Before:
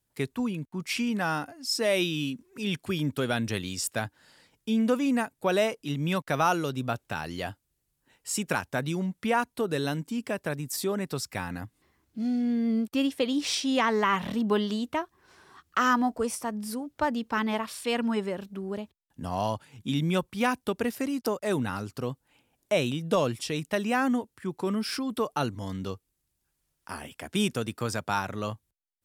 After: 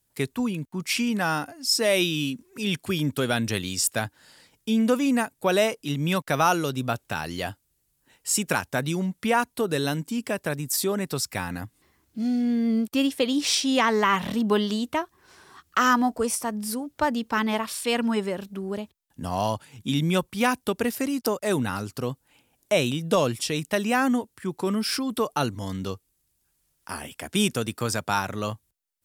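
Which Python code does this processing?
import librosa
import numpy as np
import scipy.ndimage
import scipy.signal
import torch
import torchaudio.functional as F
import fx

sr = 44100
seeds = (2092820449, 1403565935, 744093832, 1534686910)

y = fx.high_shelf(x, sr, hz=4800.0, db=6.0)
y = y * 10.0 ** (3.0 / 20.0)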